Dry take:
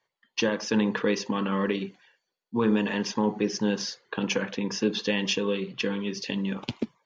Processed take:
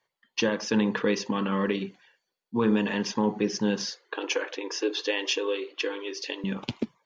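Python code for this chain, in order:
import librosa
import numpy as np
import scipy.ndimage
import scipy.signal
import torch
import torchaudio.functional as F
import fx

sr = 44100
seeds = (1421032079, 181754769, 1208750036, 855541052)

y = fx.brickwall_highpass(x, sr, low_hz=280.0, at=(3.91, 6.44))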